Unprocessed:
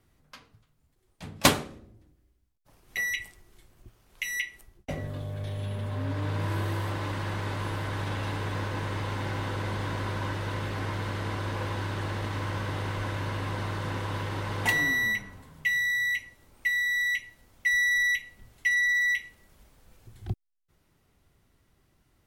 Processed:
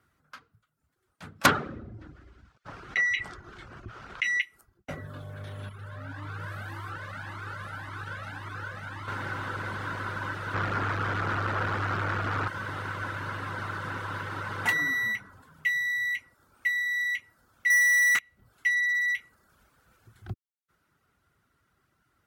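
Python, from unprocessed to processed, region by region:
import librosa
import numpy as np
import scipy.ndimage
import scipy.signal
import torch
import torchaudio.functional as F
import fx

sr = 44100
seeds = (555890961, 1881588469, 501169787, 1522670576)

y = fx.chain(x, sr, fx.air_absorb(metres=150.0),
    fx.env_flatten(amount_pct=50), at=(1.46, 4.42))
y = fx.chain(y, sr, fx.peak_eq(hz=430.0, db=-4.0, octaves=0.44),
    fx.notch(hz=1000.0, q=17.0),
    fx.comb_cascade(direction='rising', hz=1.8), at=(5.69, 9.08))
y = fx.chain(y, sr, fx.lowpass(hz=2700.0, slope=6),
    fx.leveller(passes=3),
    fx.doppler_dist(depth_ms=0.42), at=(10.54, 12.48))
y = fx.chain(y, sr, fx.highpass(hz=560.0, slope=12),
    fx.leveller(passes=5), at=(17.7, 18.19))
y = scipy.signal.sosfilt(scipy.signal.butter(2, 67.0, 'highpass', fs=sr, output='sos'), y)
y = fx.dereverb_blind(y, sr, rt60_s=0.54)
y = fx.peak_eq(y, sr, hz=1400.0, db=14.0, octaves=0.59)
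y = y * 10.0 ** (-4.0 / 20.0)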